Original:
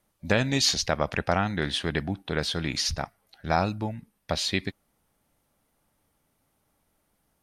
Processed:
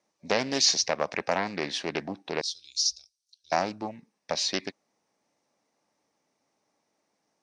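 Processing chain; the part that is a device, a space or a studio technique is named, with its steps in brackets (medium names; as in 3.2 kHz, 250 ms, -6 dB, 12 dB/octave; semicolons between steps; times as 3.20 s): 2.41–3.52 s: inverse Chebyshev band-stop 100–2000 Hz, stop band 40 dB; full-range speaker at full volume (loudspeaker Doppler distortion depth 0.54 ms; cabinet simulation 280–7000 Hz, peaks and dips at 1.4 kHz -7 dB, 3.2 kHz -7 dB, 5.7 kHz +7 dB)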